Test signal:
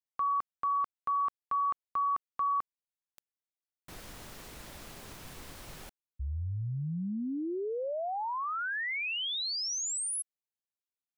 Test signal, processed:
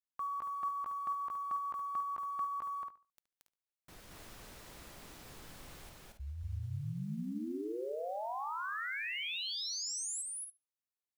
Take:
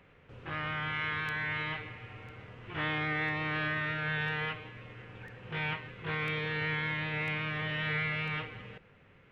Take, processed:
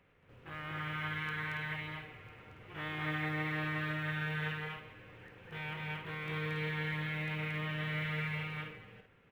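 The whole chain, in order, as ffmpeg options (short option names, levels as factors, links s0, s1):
-filter_complex "[0:a]asplit=2[s0][s1];[s1]adelay=72,lowpass=f=4200:p=1,volume=0.168,asplit=2[s2][s3];[s3]adelay=72,lowpass=f=4200:p=1,volume=0.25,asplit=2[s4][s5];[s5]adelay=72,lowpass=f=4200:p=1,volume=0.25[s6];[s2][s4][s6]amix=inputs=3:normalize=0[s7];[s0][s7]amix=inputs=2:normalize=0,acrusher=bits=8:mode=log:mix=0:aa=0.000001,asplit=2[s8][s9];[s9]aecho=0:1:227.4|279.9:0.891|0.447[s10];[s8][s10]amix=inputs=2:normalize=0,volume=0.398"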